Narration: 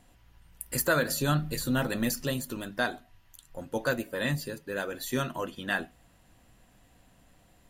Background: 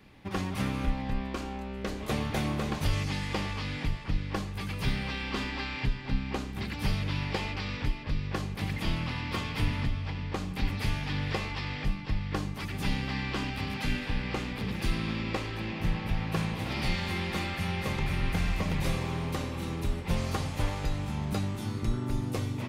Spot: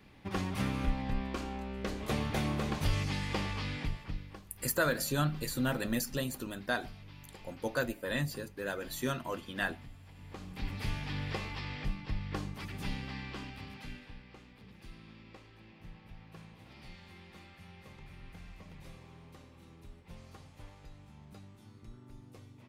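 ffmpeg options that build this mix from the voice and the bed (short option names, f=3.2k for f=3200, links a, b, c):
-filter_complex "[0:a]adelay=3900,volume=-4dB[a];[1:a]volume=12.5dB,afade=t=out:st=3.67:d=0.74:silence=0.125893,afade=t=in:st=10.12:d=0.78:silence=0.177828,afade=t=out:st=12.44:d=1.82:silence=0.158489[b];[a][b]amix=inputs=2:normalize=0"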